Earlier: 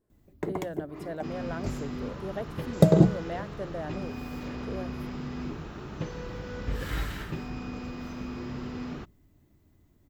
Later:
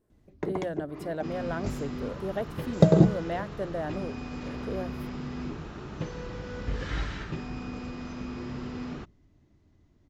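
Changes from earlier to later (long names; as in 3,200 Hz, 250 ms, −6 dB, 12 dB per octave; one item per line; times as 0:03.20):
speech +3.5 dB
first sound: add Butterworth low-pass 6,700 Hz 48 dB per octave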